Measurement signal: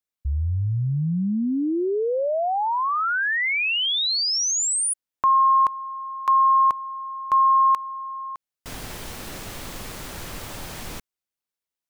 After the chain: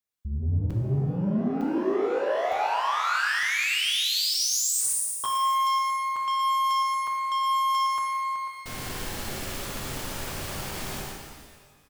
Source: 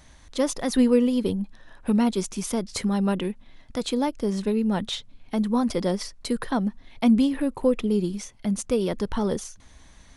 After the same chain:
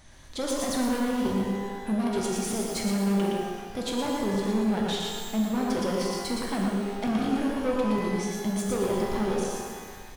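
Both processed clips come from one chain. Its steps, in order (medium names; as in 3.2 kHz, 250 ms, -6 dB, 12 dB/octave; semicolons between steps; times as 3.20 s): on a send: feedback delay 116 ms, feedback 26%, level -4 dB; on the sum: saturation -24.5 dBFS; crackling interface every 0.91 s, samples 256, zero, from 0.70 s; pitch-shifted reverb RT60 1.5 s, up +12 st, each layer -8 dB, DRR 0 dB; trim -2 dB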